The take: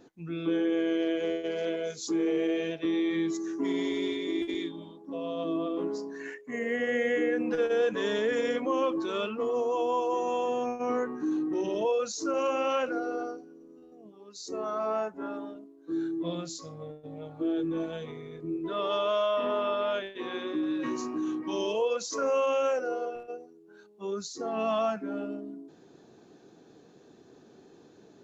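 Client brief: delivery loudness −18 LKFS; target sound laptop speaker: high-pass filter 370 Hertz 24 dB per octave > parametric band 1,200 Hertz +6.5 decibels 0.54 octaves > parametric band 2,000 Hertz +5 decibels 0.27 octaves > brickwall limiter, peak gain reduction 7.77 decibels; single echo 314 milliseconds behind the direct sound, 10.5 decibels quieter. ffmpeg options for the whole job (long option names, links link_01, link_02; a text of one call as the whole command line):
ffmpeg -i in.wav -af "highpass=frequency=370:width=0.5412,highpass=frequency=370:width=1.3066,equalizer=frequency=1200:width_type=o:width=0.54:gain=6.5,equalizer=frequency=2000:width_type=o:width=0.27:gain=5,aecho=1:1:314:0.299,volume=14dB,alimiter=limit=-8dB:level=0:latency=1" out.wav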